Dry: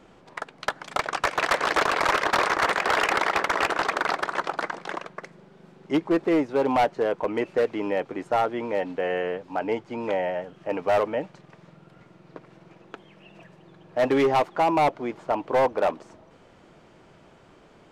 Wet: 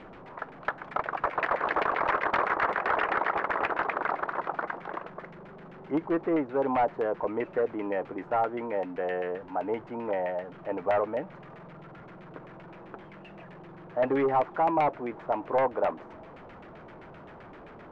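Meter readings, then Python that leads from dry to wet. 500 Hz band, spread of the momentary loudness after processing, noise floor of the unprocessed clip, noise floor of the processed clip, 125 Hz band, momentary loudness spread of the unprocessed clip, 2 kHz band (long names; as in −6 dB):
−4.0 dB, 21 LU, −54 dBFS, −48 dBFS, −4.0 dB, 10 LU, −5.5 dB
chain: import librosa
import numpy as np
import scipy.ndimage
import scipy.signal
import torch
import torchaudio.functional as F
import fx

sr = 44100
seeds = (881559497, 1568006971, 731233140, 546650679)

y = x + 0.5 * 10.0 ** (-38.0 / 20.0) * np.sign(x)
y = fx.filter_lfo_lowpass(y, sr, shape='saw_down', hz=7.7, low_hz=790.0, high_hz=2400.0, q=1.4)
y = y * 10.0 ** (-6.0 / 20.0)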